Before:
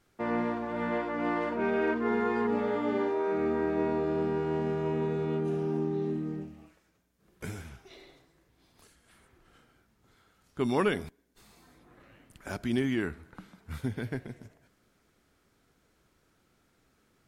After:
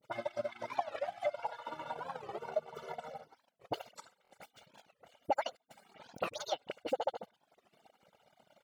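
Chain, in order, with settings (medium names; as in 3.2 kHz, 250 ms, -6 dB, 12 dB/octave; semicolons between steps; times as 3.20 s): harmonic-percussive separation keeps percussive; low-pass 9.4 kHz; phase dispersion highs, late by 47 ms, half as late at 420 Hz; compression 8:1, threshold -43 dBFS, peak gain reduction 19 dB; high-pass 94 Hz 12 dB/octave; peaking EQ 280 Hz +2.5 dB 1.5 oct; comb 2.8 ms, depth 57%; speed mistake 7.5 ips tape played at 15 ips; treble shelf 5.4 kHz -10 dB; transient shaper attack +7 dB, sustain -8 dB; buffer glitch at 4.23 s, samples 1024, times 2; warped record 45 rpm, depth 250 cents; trim +5 dB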